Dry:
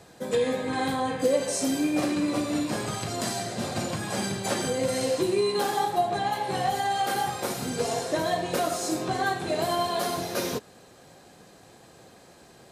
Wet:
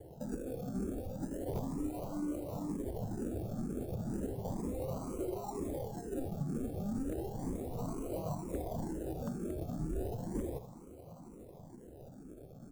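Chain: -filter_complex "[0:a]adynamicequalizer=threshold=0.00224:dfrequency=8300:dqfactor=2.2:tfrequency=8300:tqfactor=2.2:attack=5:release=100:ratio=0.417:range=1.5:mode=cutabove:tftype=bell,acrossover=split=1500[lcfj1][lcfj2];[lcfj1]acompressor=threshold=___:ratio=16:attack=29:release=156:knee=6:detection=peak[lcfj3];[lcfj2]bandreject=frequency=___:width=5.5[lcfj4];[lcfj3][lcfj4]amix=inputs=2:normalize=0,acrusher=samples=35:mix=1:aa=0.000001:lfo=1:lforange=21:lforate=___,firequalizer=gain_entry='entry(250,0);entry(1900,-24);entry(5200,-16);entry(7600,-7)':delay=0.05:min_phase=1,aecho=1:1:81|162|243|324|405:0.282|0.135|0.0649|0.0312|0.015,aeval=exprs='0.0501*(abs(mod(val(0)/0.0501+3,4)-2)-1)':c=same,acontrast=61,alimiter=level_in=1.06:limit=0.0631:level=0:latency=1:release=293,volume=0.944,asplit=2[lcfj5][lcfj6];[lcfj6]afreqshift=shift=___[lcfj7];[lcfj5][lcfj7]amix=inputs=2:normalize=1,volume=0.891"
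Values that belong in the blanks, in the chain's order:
0.01, 2k, 0.34, 2.1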